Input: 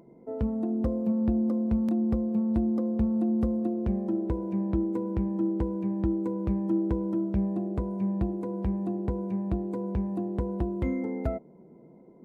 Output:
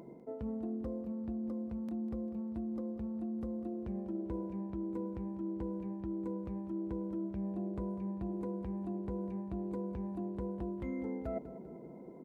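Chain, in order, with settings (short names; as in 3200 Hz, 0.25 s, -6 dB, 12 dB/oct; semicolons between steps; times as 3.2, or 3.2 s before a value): low shelf 110 Hz -6 dB; reverse; compressor 12:1, threshold -40 dBFS, peak gain reduction 18 dB; reverse; feedback echo 0.198 s, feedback 46%, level -14 dB; gain +4 dB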